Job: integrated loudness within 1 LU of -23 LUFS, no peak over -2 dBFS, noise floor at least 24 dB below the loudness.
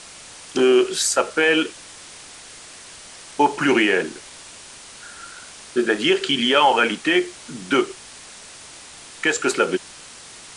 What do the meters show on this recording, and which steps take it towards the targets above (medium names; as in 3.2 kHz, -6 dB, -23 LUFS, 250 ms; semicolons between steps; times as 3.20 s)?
noise floor -42 dBFS; noise floor target -44 dBFS; loudness -19.5 LUFS; peak level -4.0 dBFS; loudness target -23.0 LUFS
-> noise print and reduce 6 dB; trim -3.5 dB